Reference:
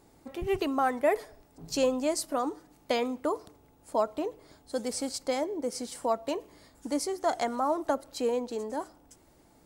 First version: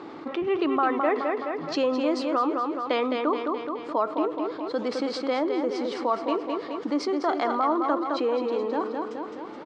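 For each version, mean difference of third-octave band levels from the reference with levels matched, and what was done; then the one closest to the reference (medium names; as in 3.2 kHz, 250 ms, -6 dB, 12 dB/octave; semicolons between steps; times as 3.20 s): 10.5 dB: cabinet simulation 270–3800 Hz, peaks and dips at 320 Hz +8 dB, 660 Hz -3 dB, 1.2 kHz +9 dB; feedback delay 212 ms, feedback 43%, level -7 dB; level flattener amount 50%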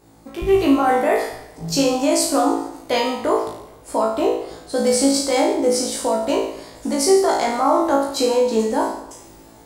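6.0 dB: peak limiter -24 dBFS, peak gain reduction 9 dB; level rider gain up to 7 dB; on a send: flutter echo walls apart 3.1 m, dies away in 0.64 s; on the sum: modulated delay 143 ms, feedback 46%, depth 155 cents, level -19.5 dB; trim +4 dB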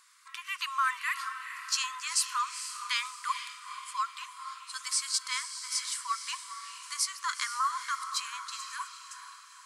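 19.5 dB: low-pass 11 kHz 24 dB/octave; in parallel at 0 dB: peak limiter -25.5 dBFS, peak gain reduction 10.5 dB; on the sum: brick-wall FIR high-pass 980 Hz; echo that smears into a reverb 458 ms, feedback 47%, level -9 dB; trim +2 dB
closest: second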